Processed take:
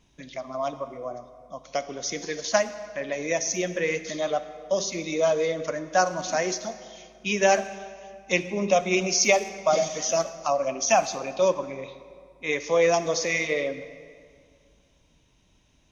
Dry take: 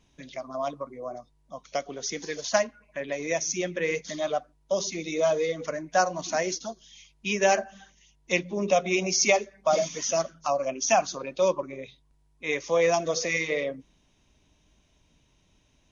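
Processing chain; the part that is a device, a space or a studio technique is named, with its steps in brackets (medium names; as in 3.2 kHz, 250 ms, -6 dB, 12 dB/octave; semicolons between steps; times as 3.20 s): saturated reverb return (on a send at -11 dB: reverberation RT60 2.0 s, pre-delay 31 ms + saturation -20 dBFS, distortion -16 dB); on the sum: trim +1.5 dB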